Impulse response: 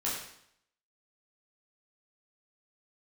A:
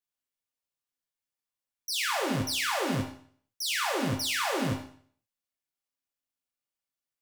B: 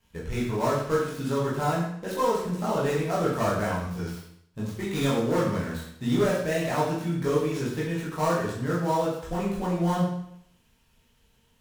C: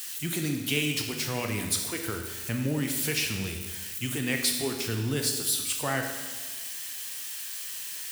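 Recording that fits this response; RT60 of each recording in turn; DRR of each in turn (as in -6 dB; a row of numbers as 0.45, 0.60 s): B; 0.50, 0.70, 1.4 s; -0.5, -7.0, 2.5 dB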